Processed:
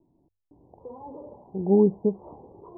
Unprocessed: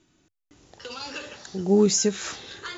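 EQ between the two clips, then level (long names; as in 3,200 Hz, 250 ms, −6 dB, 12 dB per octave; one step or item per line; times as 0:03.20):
Butterworth low-pass 1,000 Hz 96 dB per octave
mains-hum notches 50/100 Hz
0.0 dB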